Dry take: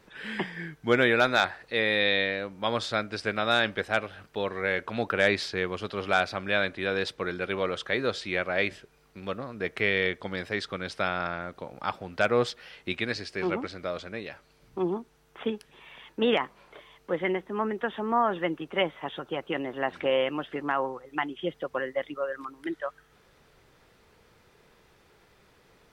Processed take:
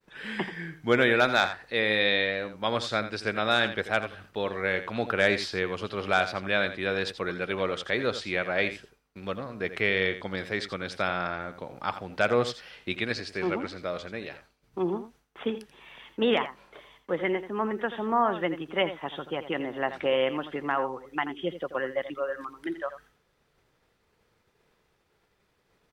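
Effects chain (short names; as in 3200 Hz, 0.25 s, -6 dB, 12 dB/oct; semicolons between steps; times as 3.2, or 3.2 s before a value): expander -52 dBFS; echo 84 ms -12 dB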